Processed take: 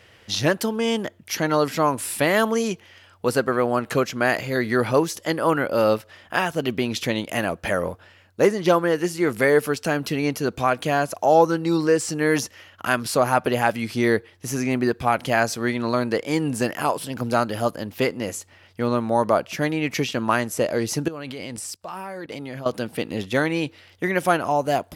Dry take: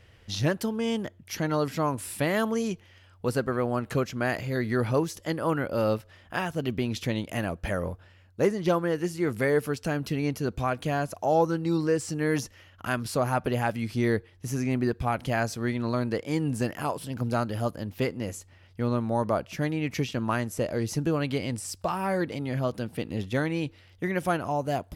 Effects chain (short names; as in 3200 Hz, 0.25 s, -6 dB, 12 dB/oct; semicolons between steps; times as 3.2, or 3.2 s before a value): HPF 330 Hz 6 dB/oct; 21.08–22.66 level quantiser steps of 21 dB; gain +8.5 dB